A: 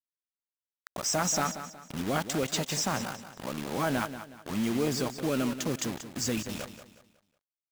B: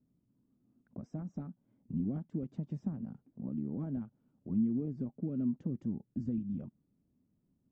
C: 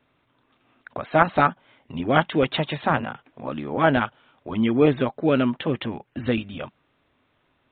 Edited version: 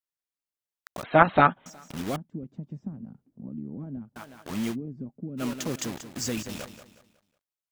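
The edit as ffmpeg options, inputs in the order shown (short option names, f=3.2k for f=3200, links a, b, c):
-filter_complex "[1:a]asplit=2[a][b];[0:a]asplit=4[c][d][e][f];[c]atrim=end=1.032[g];[2:a]atrim=start=1.028:end=1.662[h];[d]atrim=start=1.658:end=2.162[i];[a]atrim=start=2.158:end=4.162[j];[e]atrim=start=4.158:end=4.76[k];[b]atrim=start=4.7:end=5.43[l];[f]atrim=start=5.37[m];[g][h]acrossfade=d=0.004:c1=hsin:c2=hsin[n];[n][i]acrossfade=d=0.004:c1=hsin:c2=hsin[o];[o][j]acrossfade=d=0.004:c1=hsin:c2=hsin[p];[p][k]acrossfade=d=0.004:c1=hsin:c2=hsin[q];[q][l]acrossfade=d=0.06:c1=tri:c2=tri[r];[r][m]acrossfade=d=0.06:c1=tri:c2=tri"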